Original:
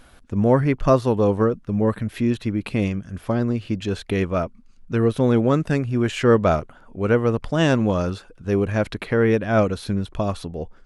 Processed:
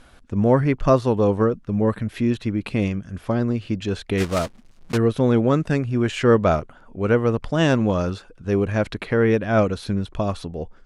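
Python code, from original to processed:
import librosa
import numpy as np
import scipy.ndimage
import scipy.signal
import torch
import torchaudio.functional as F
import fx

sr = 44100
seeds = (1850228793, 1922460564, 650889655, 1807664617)

y = fx.block_float(x, sr, bits=3, at=(4.17, 4.96), fade=0.02)
y = scipy.signal.sosfilt(scipy.signal.butter(2, 9800.0, 'lowpass', fs=sr, output='sos'), y)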